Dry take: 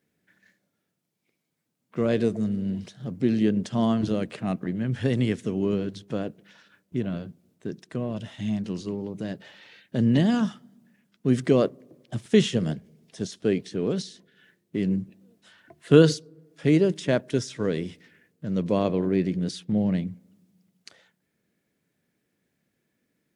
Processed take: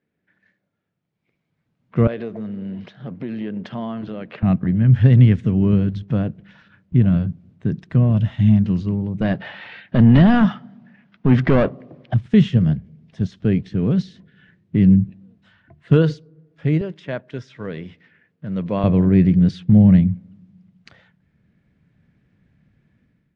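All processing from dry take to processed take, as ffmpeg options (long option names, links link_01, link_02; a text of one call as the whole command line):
ffmpeg -i in.wav -filter_complex "[0:a]asettb=1/sr,asplit=3[link_01][link_02][link_03];[link_01]atrim=end=2.074[link_04];[link_02]atrim=start=2.07:end=4.43,asetpts=PTS-STARTPTS,afade=type=in:duration=0.004:curve=qsin,afade=type=out:start_time=2.356:duration=0.004:curve=qsin,acompressor=threshold=-30dB:ratio=3:attack=3.2:release=140:knee=1:detection=peak,highpass=330,lowpass=4000[link_05];[link_03]atrim=start=4.426[link_06];[link_04][link_05]acrossfade=duration=0.004:curve1=hsin:curve2=qsin[link_07];[link_07][link_06]acrossfade=duration=0.004:curve1=qsin:curve2=hsin,asettb=1/sr,asplit=3[link_08][link_09][link_10];[link_08]atrim=end=9.214[link_11];[link_09]atrim=start=9.21:end=12.14,asetpts=PTS-STARTPTS,afade=type=in:duration=0.004:curve=qsin,afade=type=out:start_time=2.926:duration=0.004:curve=qsin,lowpass=frequency=6300:width=0.5412,lowpass=frequency=6300:width=1.3066,equalizer=frequency=740:width=3.1:gain=5,asplit=2[link_12][link_13];[link_13]highpass=frequency=720:poles=1,volume=21dB,asoftclip=type=tanh:threshold=-7.5dB[link_14];[link_12][link_14]amix=inputs=2:normalize=0,lowpass=frequency=2700:poles=1,volume=-6dB[link_15];[link_10]atrim=start=12.136[link_16];[link_11][link_15]acrossfade=duration=0.004:curve1=hsin:curve2=qsin[link_17];[link_17][link_16]acrossfade=duration=0.004:curve1=qsin:curve2=hsin,asettb=1/sr,asplit=3[link_18][link_19][link_20];[link_18]atrim=end=16.814[link_21];[link_19]atrim=start=16.81:end=18.84,asetpts=PTS-STARTPTS,afade=type=in:duration=0.004:curve=qsin,afade=type=out:start_time=2.026:duration=0.004:curve=qsin,highpass=frequency=500:poles=1,highshelf=frequency=8400:gain=-11[link_22];[link_20]atrim=start=18.836[link_23];[link_21][link_22]acrossfade=duration=0.004:curve1=hsin:curve2=qsin[link_24];[link_24][link_23]acrossfade=duration=0.004:curve1=qsin:curve2=hsin,lowpass=2600,asubboost=boost=8.5:cutoff=130,dynaudnorm=framelen=920:gausssize=3:maxgain=11.5dB,volume=-1dB" out.wav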